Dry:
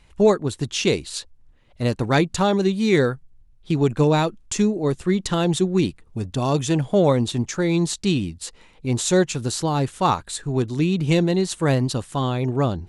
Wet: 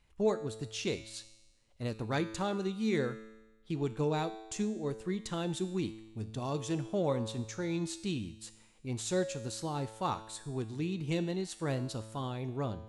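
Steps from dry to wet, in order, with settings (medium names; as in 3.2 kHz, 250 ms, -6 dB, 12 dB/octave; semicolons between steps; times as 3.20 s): feedback comb 110 Hz, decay 1.1 s, harmonics all, mix 70%; trim -5 dB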